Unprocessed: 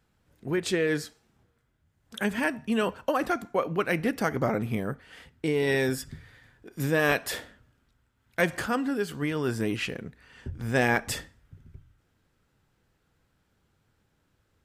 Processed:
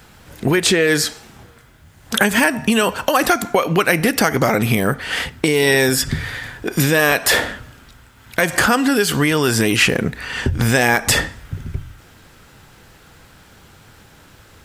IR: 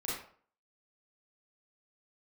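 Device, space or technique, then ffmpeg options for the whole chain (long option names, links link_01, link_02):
mastering chain: -filter_complex "[0:a]equalizer=frequency=780:width_type=o:width=0.77:gain=2,acrossover=split=2200|5200[link_01][link_02][link_03];[link_01]acompressor=threshold=-35dB:ratio=4[link_04];[link_02]acompressor=threshold=-49dB:ratio=4[link_05];[link_03]acompressor=threshold=-48dB:ratio=4[link_06];[link_04][link_05][link_06]amix=inputs=3:normalize=0,acompressor=threshold=-37dB:ratio=2.5,asoftclip=type=tanh:threshold=-22dB,tiltshelf=frequency=970:gain=-3,alimiter=level_in=26.5dB:limit=-1dB:release=50:level=0:latency=1,volume=-1dB"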